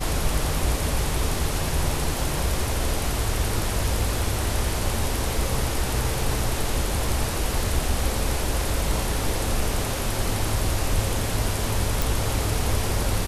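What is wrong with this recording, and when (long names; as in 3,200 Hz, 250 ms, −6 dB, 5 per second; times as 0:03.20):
0:12.02: click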